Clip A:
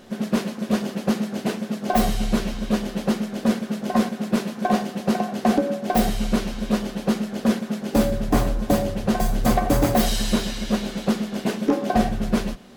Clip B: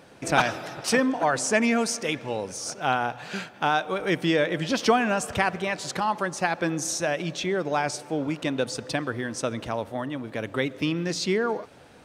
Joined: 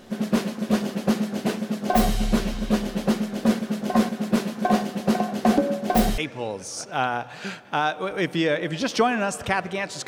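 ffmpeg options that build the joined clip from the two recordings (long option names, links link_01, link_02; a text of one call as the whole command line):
ffmpeg -i cue0.wav -i cue1.wav -filter_complex "[0:a]apad=whole_dur=10.07,atrim=end=10.07,atrim=end=6.182[link_01];[1:a]atrim=start=2.068:end=5.96[link_02];[link_01][link_02]acrossfade=duration=0.004:curve1=hsin:curve2=hsin" out.wav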